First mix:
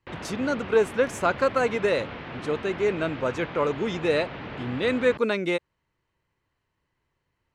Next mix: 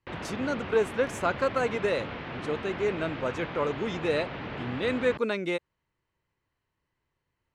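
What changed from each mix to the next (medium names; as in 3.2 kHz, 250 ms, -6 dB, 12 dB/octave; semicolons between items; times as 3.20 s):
speech -4.0 dB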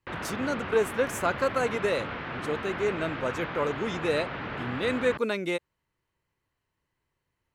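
speech: remove distance through air 52 m; background: add peaking EQ 1.4 kHz +6 dB 0.98 oct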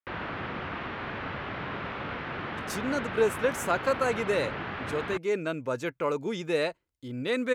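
speech: entry +2.45 s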